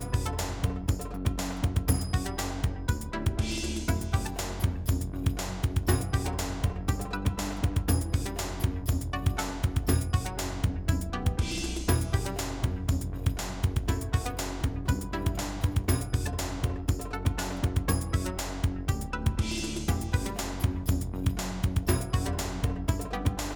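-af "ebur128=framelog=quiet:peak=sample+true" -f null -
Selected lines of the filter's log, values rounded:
Integrated loudness:
  I:         -30.5 LUFS
  Threshold: -40.5 LUFS
Loudness range:
  LRA:         1.0 LU
  Threshold: -50.4 LUFS
  LRA low:   -30.9 LUFS
  LRA high:  -29.8 LUFS
Sample peak:
  Peak:      -11.3 dBFS
True peak:
  Peak:      -11.0 dBFS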